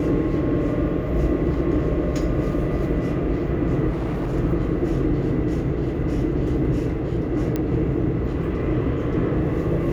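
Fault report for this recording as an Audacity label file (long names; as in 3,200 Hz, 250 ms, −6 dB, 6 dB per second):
3.890000	4.340000	clipping −21.5 dBFS
7.560000	7.560000	click −12 dBFS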